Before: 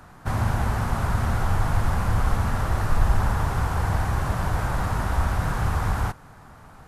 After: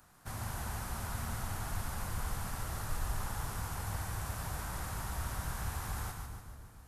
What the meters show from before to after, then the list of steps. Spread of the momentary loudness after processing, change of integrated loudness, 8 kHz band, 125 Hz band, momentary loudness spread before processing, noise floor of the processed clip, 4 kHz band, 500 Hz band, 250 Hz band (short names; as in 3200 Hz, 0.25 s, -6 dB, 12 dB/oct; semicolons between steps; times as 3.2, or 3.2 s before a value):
3 LU, -14.5 dB, -2.0 dB, -16.0 dB, 2 LU, -54 dBFS, -7.5 dB, -15.5 dB, -15.5 dB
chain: pre-emphasis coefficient 0.8; split-band echo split 550 Hz, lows 0.287 s, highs 0.144 s, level -5 dB; gain -3.5 dB